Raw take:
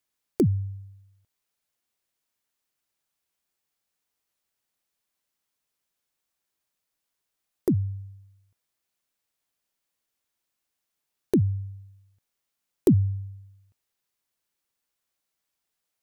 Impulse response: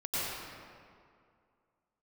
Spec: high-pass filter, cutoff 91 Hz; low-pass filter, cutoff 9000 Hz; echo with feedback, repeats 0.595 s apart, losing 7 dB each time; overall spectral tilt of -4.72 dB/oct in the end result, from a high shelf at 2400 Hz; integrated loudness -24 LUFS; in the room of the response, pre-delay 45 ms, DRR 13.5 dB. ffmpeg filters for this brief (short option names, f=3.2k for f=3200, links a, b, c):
-filter_complex "[0:a]highpass=91,lowpass=9k,highshelf=f=2.4k:g=7,aecho=1:1:595|1190|1785|2380|2975:0.447|0.201|0.0905|0.0407|0.0183,asplit=2[a][b];[1:a]atrim=start_sample=2205,adelay=45[c];[b][c]afir=irnorm=-1:irlink=0,volume=-21dB[d];[a][d]amix=inputs=2:normalize=0,volume=6dB"